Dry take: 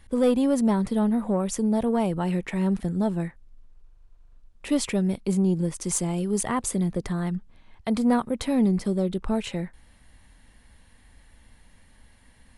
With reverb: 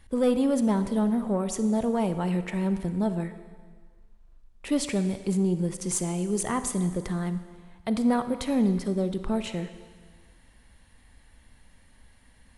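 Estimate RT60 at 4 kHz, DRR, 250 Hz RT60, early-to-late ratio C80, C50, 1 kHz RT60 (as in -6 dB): 1.6 s, 10.0 dB, 1.5 s, 12.0 dB, 10.5 dB, 1.7 s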